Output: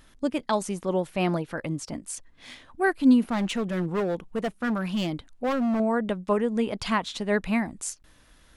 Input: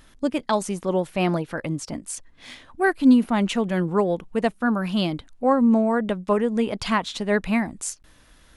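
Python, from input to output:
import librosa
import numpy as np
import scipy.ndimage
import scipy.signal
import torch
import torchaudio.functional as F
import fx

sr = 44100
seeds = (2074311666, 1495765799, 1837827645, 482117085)

y = fx.clip_hard(x, sr, threshold_db=-19.5, at=(3.26, 5.8))
y = F.gain(torch.from_numpy(y), -3.0).numpy()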